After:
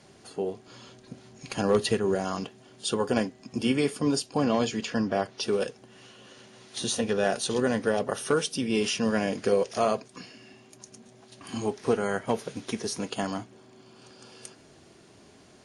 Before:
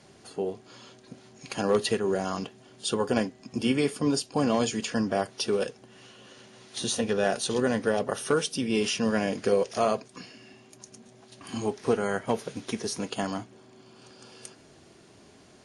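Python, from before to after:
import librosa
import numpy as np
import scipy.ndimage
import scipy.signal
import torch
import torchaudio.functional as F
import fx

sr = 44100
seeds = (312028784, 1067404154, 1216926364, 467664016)

y = fx.low_shelf(x, sr, hz=120.0, db=9.0, at=(0.67, 2.15))
y = fx.lowpass(y, sr, hz=5700.0, slope=12, at=(4.37, 5.43))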